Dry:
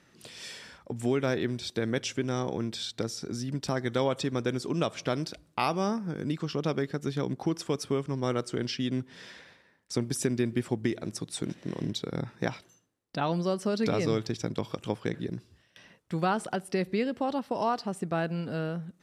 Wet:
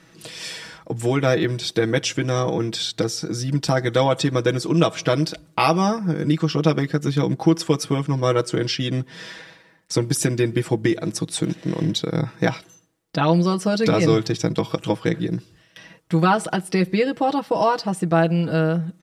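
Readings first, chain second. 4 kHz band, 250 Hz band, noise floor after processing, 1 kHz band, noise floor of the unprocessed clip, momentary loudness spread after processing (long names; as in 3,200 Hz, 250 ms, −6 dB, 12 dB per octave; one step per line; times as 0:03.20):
+10.0 dB, +9.5 dB, −55 dBFS, +10.0 dB, −65 dBFS, 7 LU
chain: comb filter 6.2 ms, depth 77%
level +8 dB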